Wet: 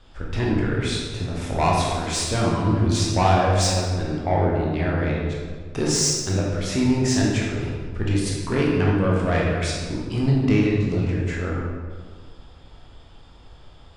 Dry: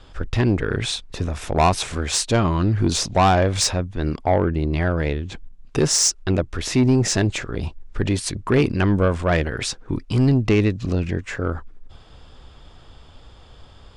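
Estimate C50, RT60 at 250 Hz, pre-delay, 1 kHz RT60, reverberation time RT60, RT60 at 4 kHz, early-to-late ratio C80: 0.0 dB, 1.9 s, 12 ms, 1.6 s, 1.7 s, 1.1 s, 2.0 dB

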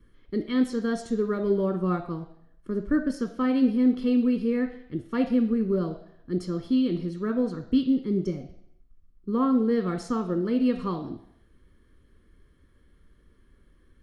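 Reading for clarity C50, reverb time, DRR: 11.0 dB, 0.70 s, 7.5 dB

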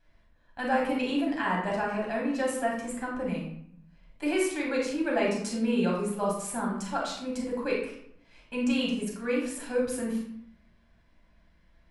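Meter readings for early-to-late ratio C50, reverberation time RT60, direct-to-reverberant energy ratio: 3.5 dB, 0.70 s, -3.5 dB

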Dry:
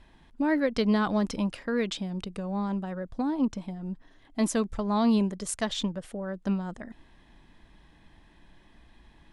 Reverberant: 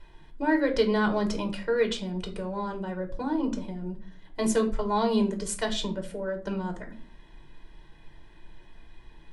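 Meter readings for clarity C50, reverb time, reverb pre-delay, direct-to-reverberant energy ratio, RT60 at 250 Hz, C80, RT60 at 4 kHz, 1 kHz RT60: 12.5 dB, 0.40 s, 3 ms, 3.0 dB, 0.55 s, 18.0 dB, 0.30 s, 0.35 s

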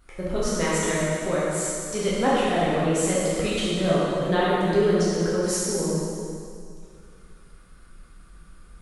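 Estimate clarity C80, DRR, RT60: -1.5 dB, -8.5 dB, 2.3 s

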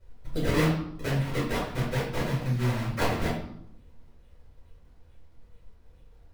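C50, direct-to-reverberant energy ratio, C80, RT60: 3.0 dB, -7.5 dB, 7.0 dB, 0.75 s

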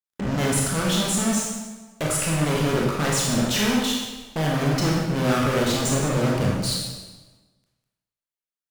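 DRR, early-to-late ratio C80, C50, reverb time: -4.0 dB, 3.0 dB, 0.0 dB, 1.3 s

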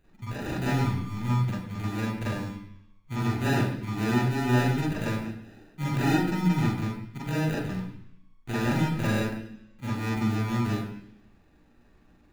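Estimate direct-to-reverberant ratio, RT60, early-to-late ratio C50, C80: -7.0 dB, 0.70 s, 2.0 dB, 6.5 dB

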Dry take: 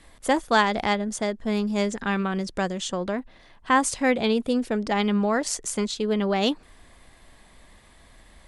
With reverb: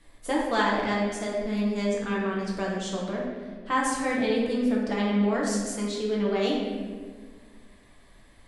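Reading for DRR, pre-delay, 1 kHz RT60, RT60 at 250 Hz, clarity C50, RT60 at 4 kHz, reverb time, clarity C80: -4.5 dB, 4 ms, 1.4 s, 2.2 s, 0.5 dB, 1.0 s, 1.7 s, 3.0 dB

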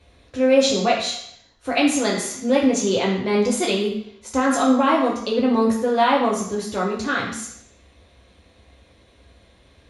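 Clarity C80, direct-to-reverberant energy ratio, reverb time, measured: 8.5 dB, -3.0 dB, 0.70 s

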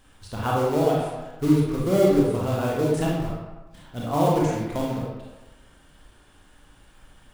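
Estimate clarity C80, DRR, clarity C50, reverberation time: 3.0 dB, -4.5 dB, -0.5 dB, 1.1 s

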